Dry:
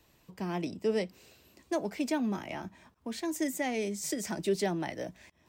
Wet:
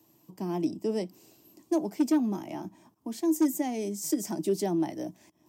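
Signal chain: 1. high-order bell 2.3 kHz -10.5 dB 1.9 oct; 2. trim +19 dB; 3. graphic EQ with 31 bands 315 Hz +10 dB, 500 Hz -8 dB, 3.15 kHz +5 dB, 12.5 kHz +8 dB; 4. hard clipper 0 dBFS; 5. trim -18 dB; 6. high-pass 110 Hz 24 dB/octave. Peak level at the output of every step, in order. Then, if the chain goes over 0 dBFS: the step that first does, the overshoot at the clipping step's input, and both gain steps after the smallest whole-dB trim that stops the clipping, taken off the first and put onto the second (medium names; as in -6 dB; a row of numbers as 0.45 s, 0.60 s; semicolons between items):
-19.5 dBFS, -0.5 dBFS, +4.5 dBFS, 0.0 dBFS, -18.0 dBFS, -14.5 dBFS; step 3, 4.5 dB; step 2 +14 dB, step 5 -13 dB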